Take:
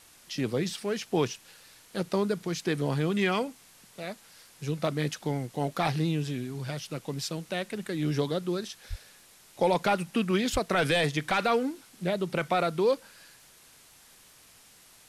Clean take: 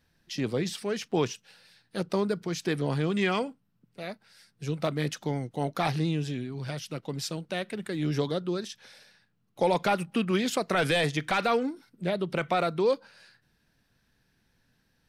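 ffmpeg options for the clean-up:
-filter_complex "[0:a]adeclick=t=4,asplit=3[a][b][c];[a]afade=t=out:st=8.89:d=0.02[d];[b]highpass=f=140:w=0.5412,highpass=f=140:w=1.3066,afade=t=in:st=8.89:d=0.02,afade=t=out:st=9.01:d=0.02[e];[c]afade=t=in:st=9.01:d=0.02[f];[d][e][f]amix=inputs=3:normalize=0,asplit=3[g][h][i];[g]afade=t=out:st=10.52:d=0.02[j];[h]highpass=f=140:w=0.5412,highpass=f=140:w=1.3066,afade=t=in:st=10.52:d=0.02,afade=t=out:st=10.64:d=0.02[k];[i]afade=t=in:st=10.64:d=0.02[l];[j][k][l]amix=inputs=3:normalize=0,afwtdn=0.002"

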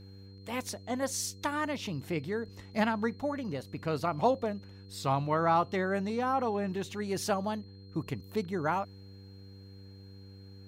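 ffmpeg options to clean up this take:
-af "bandreject=f=97.3:t=h:w=4,bandreject=f=194.6:t=h:w=4,bandreject=f=291.9:t=h:w=4,bandreject=f=389.2:t=h:w=4,bandreject=f=486.5:t=h:w=4,bandreject=f=4.2k:w=30"

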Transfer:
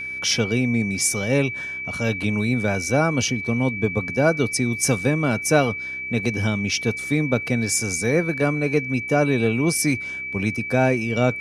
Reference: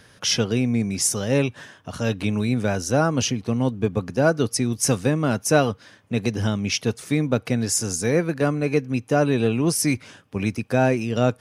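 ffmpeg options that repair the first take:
-af "bandreject=f=64.9:t=h:w=4,bandreject=f=129.8:t=h:w=4,bandreject=f=194.7:t=h:w=4,bandreject=f=259.6:t=h:w=4,bandreject=f=324.5:t=h:w=4,bandreject=f=389.4:t=h:w=4,bandreject=f=2.3k:w=30"

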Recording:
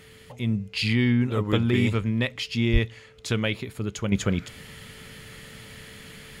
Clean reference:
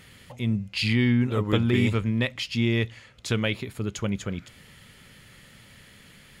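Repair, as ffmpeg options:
-filter_complex "[0:a]bandreject=f=440:w=30,asplit=3[a][b][c];[a]afade=t=out:st=2.72:d=0.02[d];[b]highpass=f=140:w=0.5412,highpass=f=140:w=1.3066,afade=t=in:st=2.72:d=0.02,afade=t=out:st=2.84:d=0.02[e];[c]afade=t=in:st=2.84:d=0.02[f];[d][e][f]amix=inputs=3:normalize=0,asetnsamples=n=441:p=0,asendcmd='4.12 volume volume -7dB',volume=0dB"

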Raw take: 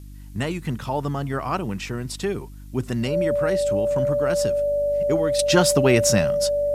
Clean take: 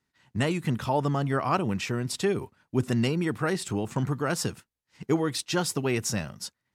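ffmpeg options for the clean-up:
-af "bandreject=f=49.6:t=h:w=4,bandreject=f=99.2:t=h:w=4,bandreject=f=148.8:t=h:w=4,bandreject=f=198.4:t=h:w=4,bandreject=f=248:t=h:w=4,bandreject=f=297.6:t=h:w=4,bandreject=f=580:w=30,agate=range=-21dB:threshold=-31dB,asetnsamples=n=441:p=0,asendcmd='5.39 volume volume -9dB',volume=0dB"

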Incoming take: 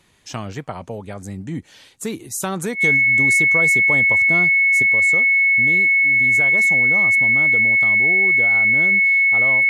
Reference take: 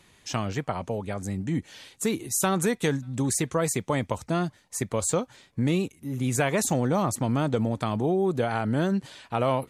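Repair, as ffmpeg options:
-af "bandreject=f=2.2k:w=30,asetnsamples=n=441:p=0,asendcmd='4.82 volume volume 6dB',volume=0dB"

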